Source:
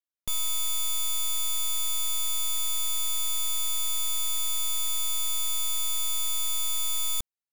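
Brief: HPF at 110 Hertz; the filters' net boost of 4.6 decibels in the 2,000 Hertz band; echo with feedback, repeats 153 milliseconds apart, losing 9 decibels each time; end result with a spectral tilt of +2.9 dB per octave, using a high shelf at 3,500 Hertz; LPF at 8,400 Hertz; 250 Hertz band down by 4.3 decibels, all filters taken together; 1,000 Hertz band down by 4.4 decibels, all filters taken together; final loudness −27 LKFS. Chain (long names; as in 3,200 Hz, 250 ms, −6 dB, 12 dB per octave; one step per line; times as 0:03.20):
high-pass filter 110 Hz
low-pass filter 8,400 Hz
parametric band 250 Hz −5.5 dB
parametric band 1,000 Hz −8.5 dB
parametric band 2,000 Hz +4 dB
high-shelf EQ 3,500 Hz +8.5 dB
repeating echo 153 ms, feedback 35%, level −9 dB
level −5 dB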